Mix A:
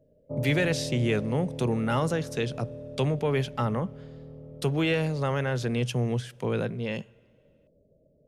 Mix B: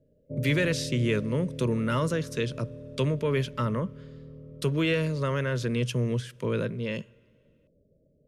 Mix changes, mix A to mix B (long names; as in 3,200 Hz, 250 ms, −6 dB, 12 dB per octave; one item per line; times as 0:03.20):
background: add moving average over 39 samples
master: add Butterworth band-reject 770 Hz, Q 2.8